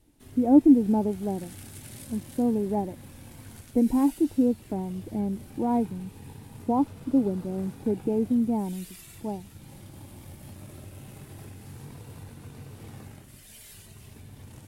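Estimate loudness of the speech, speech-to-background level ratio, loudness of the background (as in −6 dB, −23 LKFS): −26.0 LKFS, 19.5 dB, −45.5 LKFS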